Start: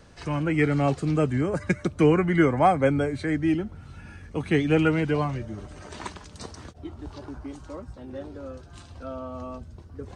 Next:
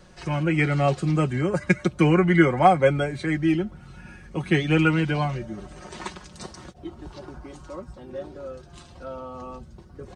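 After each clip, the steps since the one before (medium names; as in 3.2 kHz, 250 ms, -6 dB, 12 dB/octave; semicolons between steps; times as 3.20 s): comb 5.5 ms, depth 63%; dynamic bell 3.1 kHz, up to +4 dB, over -40 dBFS, Q 0.85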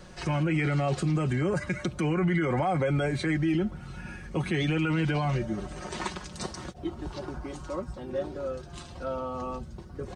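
in parallel at 0 dB: compressor with a negative ratio -25 dBFS; on the sum: peak limiter -14 dBFS, peak gain reduction 11 dB; trim -5 dB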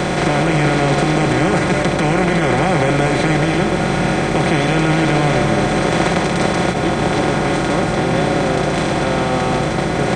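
spectral levelling over time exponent 0.2; reverberation RT60 1.1 s, pre-delay 80 ms, DRR 8.5 dB; trim +3.5 dB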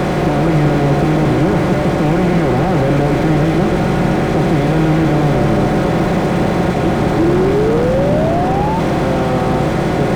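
painted sound rise, 7.18–8.80 s, 320–920 Hz -17 dBFS; slew-rate limiter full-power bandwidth 78 Hz; trim +4 dB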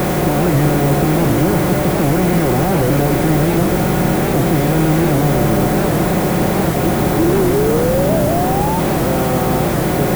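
added noise blue -28 dBFS; warped record 78 rpm, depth 160 cents; trim -1 dB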